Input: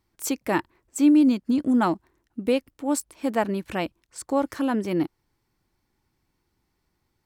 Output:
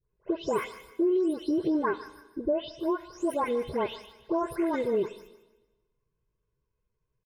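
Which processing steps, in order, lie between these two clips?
delay that grows with frequency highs late, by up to 356 ms; gate -52 dBFS, range -12 dB; bass shelf 190 Hz +8.5 dB; comb 2.4 ms, depth 66%; compression 5:1, threshold -24 dBFS, peak gain reduction 11.5 dB; pitch shift +3.5 st; low-pass 2.1 kHz 6 dB/octave; feedback echo behind a high-pass 153 ms, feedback 32%, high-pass 1.5 kHz, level -11.5 dB; on a send at -16.5 dB: reverberation RT60 1.2 s, pre-delay 43 ms

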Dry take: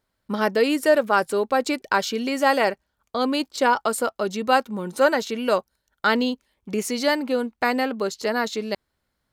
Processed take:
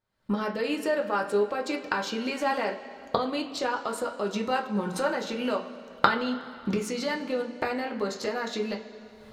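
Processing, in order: recorder AGC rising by 56 dB/s; treble shelf 8.7 kHz -10 dB; reverberation, pre-delay 3 ms, DRR -0.5 dB; trim -11 dB

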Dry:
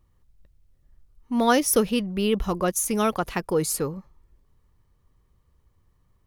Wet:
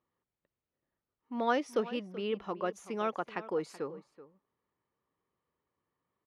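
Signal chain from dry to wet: band-pass 290–2800 Hz; echo from a far wall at 65 m, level -16 dB; trim -8.5 dB

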